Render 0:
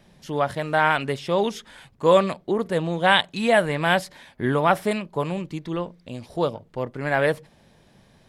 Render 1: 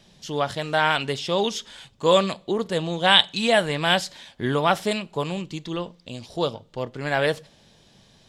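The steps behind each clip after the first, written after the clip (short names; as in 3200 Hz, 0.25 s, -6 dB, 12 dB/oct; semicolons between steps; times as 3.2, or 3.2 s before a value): band shelf 4700 Hz +9 dB; two-slope reverb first 0.33 s, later 1.7 s, from -26 dB, DRR 18 dB; gain -1.5 dB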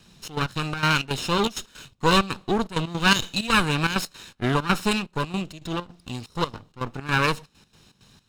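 minimum comb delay 0.75 ms; step gate "xxx.x.xx.xx.x" 163 bpm -12 dB; gain +2.5 dB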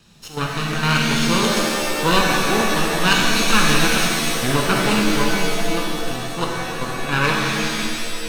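shimmer reverb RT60 2.4 s, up +7 st, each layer -2 dB, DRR -1 dB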